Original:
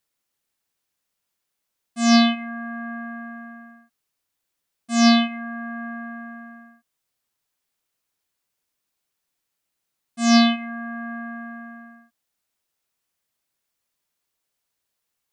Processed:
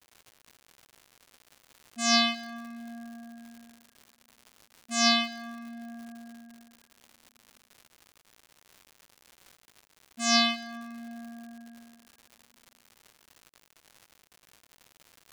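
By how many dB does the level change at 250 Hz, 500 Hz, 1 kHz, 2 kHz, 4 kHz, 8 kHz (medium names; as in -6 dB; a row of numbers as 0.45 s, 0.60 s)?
-14.0 dB, -7.5 dB, -6.5 dB, -4.5 dB, -1.5 dB, -0.5 dB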